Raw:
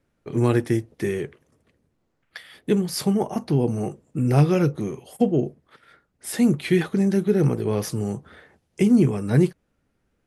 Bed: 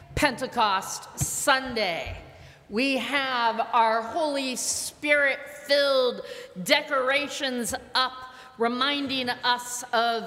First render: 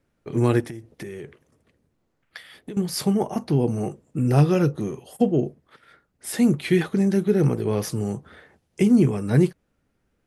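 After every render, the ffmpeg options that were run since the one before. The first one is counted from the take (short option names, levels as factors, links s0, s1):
-filter_complex "[0:a]asettb=1/sr,asplit=3[s0][s1][s2];[s0]atrim=end=0.604[s3];[s1]atrim=start=0.6:end=2.77,asetpts=PTS-STARTPTS,afade=t=in:d=0.004:c=qsin,afade=t=out:st=2.166:d=0.004:c=qsin,acompressor=threshold=0.0282:ratio=16:attack=3.2:release=140:knee=1:detection=peak[s4];[s2]atrim=start=2.766[s5];[s3][s4]acrossfade=d=0.004:c1=hsin:c2=qsin[s6];[s6][s5]acrossfade=d=0.004:c1=qsin:c2=hsin,asettb=1/sr,asplit=3[s7][s8][s9];[s7]atrim=end=4.284[s10];[s8]atrim=start=4.28:end=5.25,asetpts=PTS-STARTPTS,afade=t=in:d=0.004:c=qsin,afade=t=out:st=0.966:d=0.004:c=qsin,bandreject=f=2200:w=8.9[s11];[s9]atrim=start=5.246[s12];[s10][s11]acrossfade=d=0.004:c1=hsin:c2=qsin[s13];[s13][s12]acrossfade=d=0.004:c1=qsin:c2=hsin"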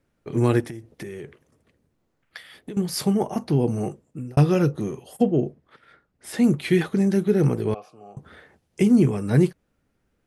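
-filter_complex "[0:a]asettb=1/sr,asplit=3[s0][s1][s2];[s0]atrim=end=5.234[s3];[s1]atrim=start=5.23:end=6.44,asetpts=PTS-STARTPTS,afade=t=in:d=0.004:c=qsin,afade=t=out:st=1.206:d=0.004:c=qsin,highshelf=f=6500:g=-10[s4];[s2]atrim=start=6.436[s5];[s3][s4]acrossfade=d=0.004:c1=hsin:c2=qsin[s6];[s6][s5]acrossfade=d=0.004:c1=qsin:c2=hsin,asettb=1/sr,asplit=3[s7][s8][s9];[s7]atrim=end=7.744[s10];[s8]atrim=start=7.74:end=8.17,asetpts=PTS-STARTPTS,afade=t=in:d=0.004:c=qsin,afade=t=out:st=0.426:d=0.004:c=qsin,asplit=3[s11][s12][s13];[s11]bandpass=f=730:t=q:w=8,volume=1[s14];[s12]bandpass=f=1090:t=q:w=8,volume=0.501[s15];[s13]bandpass=f=2440:t=q:w=8,volume=0.355[s16];[s14][s15][s16]amix=inputs=3:normalize=0[s17];[s9]atrim=start=8.166[s18];[s10][s17]acrossfade=d=0.004:c1=hsin:c2=qsin[s19];[s19][s18]acrossfade=d=0.004:c1=qsin:c2=hsin,asplit=2[s20][s21];[s20]atrim=end=4.37,asetpts=PTS-STARTPTS,afade=t=out:st=3.89:d=0.48[s22];[s21]atrim=start=4.37,asetpts=PTS-STARTPTS,afade=t=in:d=0.004:c=hsin[s23];[s22][s23]concat=n=2:v=0:a=1"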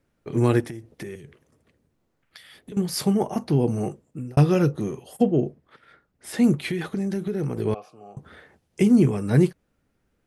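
-filter_complex "[0:a]asettb=1/sr,asplit=3[s0][s1][s2];[s0]atrim=end=1.154[s3];[s1]atrim=start=1.15:end=2.72,asetpts=PTS-STARTPTS,afade=t=in:d=0.004:c=qsin,afade=t=out:st=1.566:d=0.004:c=qsin,acrossover=split=210|3000[s4][s5][s6];[s5]acompressor=threshold=0.00355:ratio=6:attack=3.2:release=140:knee=2.83:detection=peak[s7];[s4][s7][s6]amix=inputs=3:normalize=0[s8];[s2]atrim=start=2.716[s9];[s3][s8]acrossfade=d=0.004:c1=hsin:c2=qsin[s10];[s10][s9]acrossfade=d=0.004:c1=qsin:c2=hsin,asettb=1/sr,asplit=3[s11][s12][s13];[s11]atrim=end=6.574[s14];[s12]atrim=start=6.57:end=7.57,asetpts=PTS-STARTPTS,afade=t=in:d=0.004:c=qsin,afade=t=out:st=0.996:d=0.004:c=qsin,acompressor=threshold=0.0708:ratio=6:attack=3.2:release=140:knee=1:detection=peak[s15];[s13]atrim=start=7.566[s16];[s14][s15]acrossfade=d=0.004:c1=hsin:c2=qsin[s17];[s17][s16]acrossfade=d=0.004:c1=qsin:c2=hsin"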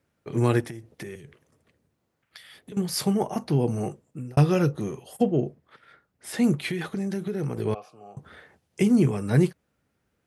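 -af "highpass=75,equalizer=f=280:w=0.88:g=-3.5"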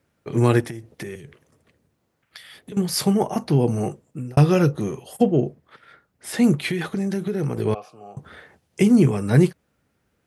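-af "volume=1.68,alimiter=limit=0.708:level=0:latency=1"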